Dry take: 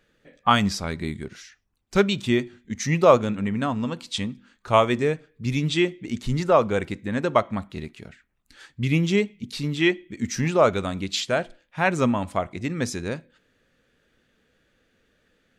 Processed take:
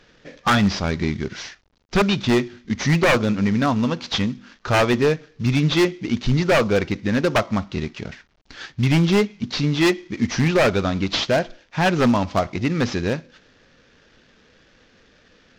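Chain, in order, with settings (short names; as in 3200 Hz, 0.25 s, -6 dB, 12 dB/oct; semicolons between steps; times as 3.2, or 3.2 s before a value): CVSD 32 kbps; in parallel at +1.5 dB: compressor 5:1, threshold -35 dBFS, peak gain reduction 21.5 dB; on the sum: wavefolder -14 dBFS; gain +4 dB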